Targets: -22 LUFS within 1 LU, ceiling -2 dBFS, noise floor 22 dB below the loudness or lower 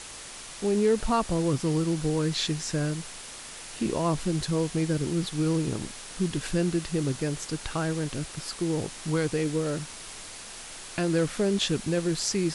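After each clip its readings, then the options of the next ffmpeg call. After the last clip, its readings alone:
noise floor -42 dBFS; noise floor target -50 dBFS; loudness -28.0 LUFS; peak -11.5 dBFS; loudness target -22.0 LUFS
-> -af "afftdn=nr=8:nf=-42"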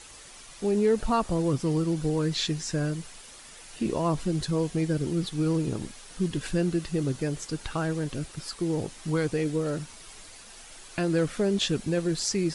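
noise floor -48 dBFS; noise floor target -51 dBFS
-> -af "afftdn=nr=6:nf=-48"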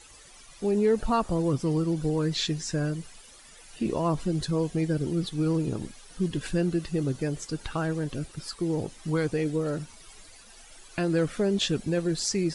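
noise floor -51 dBFS; loudness -28.5 LUFS; peak -12.5 dBFS; loudness target -22.0 LUFS
-> -af "volume=6.5dB"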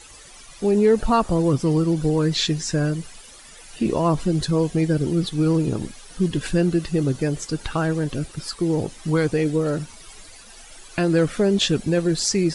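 loudness -22.0 LUFS; peak -6.0 dBFS; noise floor -45 dBFS

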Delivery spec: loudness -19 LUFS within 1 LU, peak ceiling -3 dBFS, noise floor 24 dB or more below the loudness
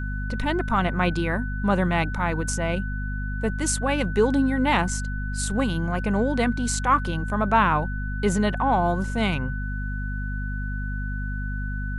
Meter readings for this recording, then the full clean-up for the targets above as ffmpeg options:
hum 50 Hz; harmonics up to 250 Hz; hum level -26 dBFS; steady tone 1500 Hz; tone level -35 dBFS; loudness -25.0 LUFS; peak -7.0 dBFS; loudness target -19.0 LUFS
-> -af "bandreject=f=50:t=h:w=4,bandreject=f=100:t=h:w=4,bandreject=f=150:t=h:w=4,bandreject=f=200:t=h:w=4,bandreject=f=250:t=h:w=4"
-af "bandreject=f=1.5k:w=30"
-af "volume=6dB,alimiter=limit=-3dB:level=0:latency=1"

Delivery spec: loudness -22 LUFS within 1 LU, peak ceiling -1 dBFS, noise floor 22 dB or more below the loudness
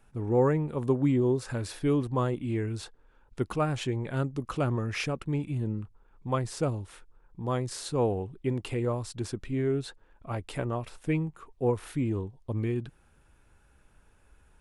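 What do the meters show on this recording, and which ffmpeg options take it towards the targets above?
loudness -30.5 LUFS; peak -13.5 dBFS; loudness target -22.0 LUFS
-> -af "volume=8.5dB"

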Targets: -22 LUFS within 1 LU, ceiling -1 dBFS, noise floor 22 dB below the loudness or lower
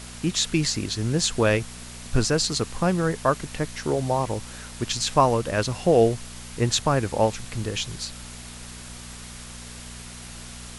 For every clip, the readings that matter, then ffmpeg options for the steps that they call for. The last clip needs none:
hum 60 Hz; harmonics up to 240 Hz; hum level -41 dBFS; noise floor -40 dBFS; noise floor target -46 dBFS; loudness -24.0 LUFS; peak -4.5 dBFS; loudness target -22.0 LUFS
-> -af "bandreject=f=60:t=h:w=4,bandreject=f=120:t=h:w=4,bandreject=f=180:t=h:w=4,bandreject=f=240:t=h:w=4"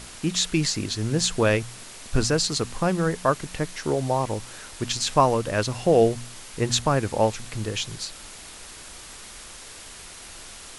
hum none; noise floor -43 dBFS; noise floor target -47 dBFS
-> -af "afftdn=nr=6:nf=-43"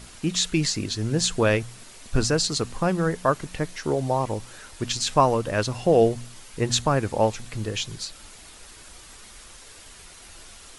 noise floor -47 dBFS; loudness -24.5 LUFS; peak -4.5 dBFS; loudness target -22.0 LUFS
-> -af "volume=2.5dB"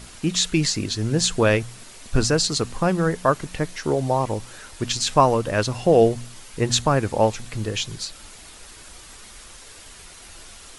loudness -22.0 LUFS; peak -2.0 dBFS; noise floor -44 dBFS

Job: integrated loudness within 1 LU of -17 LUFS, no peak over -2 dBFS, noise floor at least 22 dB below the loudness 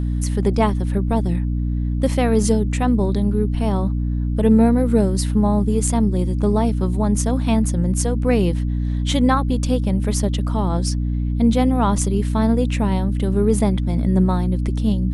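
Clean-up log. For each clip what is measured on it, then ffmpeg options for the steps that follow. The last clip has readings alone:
hum 60 Hz; harmonics up to 300 Hz; hum level -18 dBFS; loudness -19.5 LUFS; peak -4.0 dBFS; loudness target -17.0 LUFS
-> -af "bandreject=f=60:t=h:w=4,bandreject=f=120:t=h:w=4,bandreject=f=180:t=h:w=4,bandreject=f=240:t=h:w=4,bandreject=f=300:t=h:w=4"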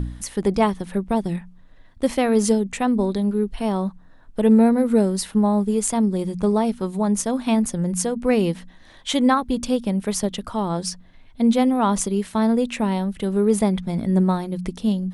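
hum none; loudness -21.5 LUFS; peak -5.5 dBFS; loudness target -17.0 LUFS
-> -af "volume=4.5dB,alimiter=limit=-2dB:level=0:latency=1"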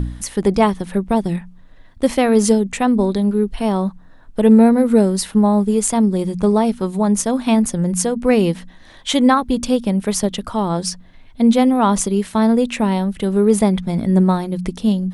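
loudness -17.0 LUFS; peak -2.0 dBFS; noise floor -43 dBFS

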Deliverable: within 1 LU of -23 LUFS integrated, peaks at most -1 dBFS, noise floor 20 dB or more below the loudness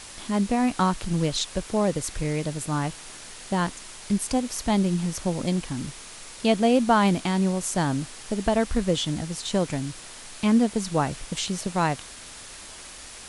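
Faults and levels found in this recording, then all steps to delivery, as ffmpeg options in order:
noise floor -43 dBFS; noise floor target -46 dBFS; loudness -25.5 LUFS; peak -8.0 dBFS; loudness target -23.0 LUFS
-> -af "afftdn=nr=6:nf=-43"
-af "volume=2.5dB"

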